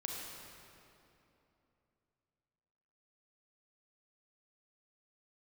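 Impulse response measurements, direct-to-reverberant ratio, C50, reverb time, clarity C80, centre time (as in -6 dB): -1.5 dB, -0.5 dB, 3.0 s, 0.5 dB, 132 ms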